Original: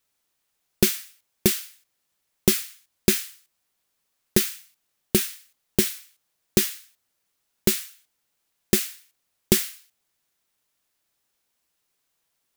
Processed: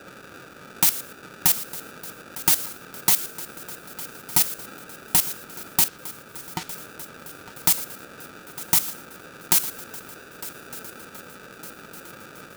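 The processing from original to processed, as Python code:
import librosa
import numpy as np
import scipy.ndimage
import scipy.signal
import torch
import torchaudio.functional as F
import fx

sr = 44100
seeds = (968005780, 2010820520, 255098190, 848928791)

y = scipy.signal.sosfilt(scipy.signal.butter(2, 270.0, 'highpass', fs=sr, output='sos'), x)
y = fx.high_shelf(y, sr, hz=4300.0, db=11.5)
y = fx.level_steps(y, sr, step_db=15)
y = fx.dmg_noise_band(y, sr, seeds[0], low_hz=660.0, high_hz=1100.0, level_db=-43.0)
y = fx.spacing_loss(y, sr, db_at_10k=26, at=(5.88, 6.75))
y = fx.echo_swing(y, sr, ms=1208, ratio=3, feedback_pct=51, wet_db=-17.5)
y = y * np.sign(np.sin(2.0 * np.pi * 540.0 * np.arange(len(y)) / sr))
y = y * 10.0 ** (-1.0 / 20.0)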